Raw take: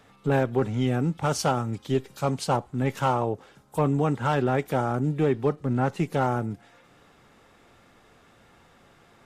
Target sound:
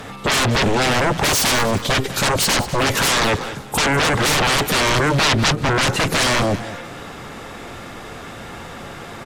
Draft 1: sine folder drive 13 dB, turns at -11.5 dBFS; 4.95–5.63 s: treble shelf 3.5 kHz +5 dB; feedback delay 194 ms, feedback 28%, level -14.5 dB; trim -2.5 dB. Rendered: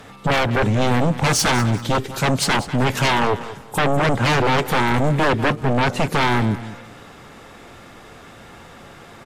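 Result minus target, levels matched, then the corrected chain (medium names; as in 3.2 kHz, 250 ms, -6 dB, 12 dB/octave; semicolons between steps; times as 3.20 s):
sine folder: distortion -21 dB
sine folder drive 21 dB, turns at -11.5 dBFS; 4.95–5.63 s: treble shelf 3.5 kHz +5 dB; feedback delay 194 ms, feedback 28%, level -14.5 dB; trim -2.5 dB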